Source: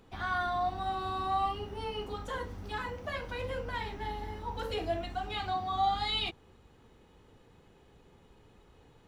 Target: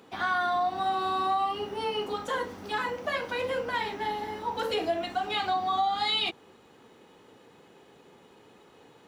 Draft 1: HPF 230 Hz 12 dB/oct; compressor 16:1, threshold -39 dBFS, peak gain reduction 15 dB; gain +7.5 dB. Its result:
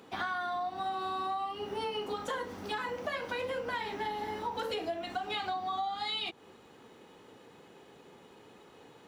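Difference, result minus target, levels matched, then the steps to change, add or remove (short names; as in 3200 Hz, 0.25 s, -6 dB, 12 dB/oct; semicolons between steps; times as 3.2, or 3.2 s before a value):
compressor: peak gain reduction +8 dB
change: compressor 16:1, threshold -30.5 dBFS, peak gain reduction 7 dB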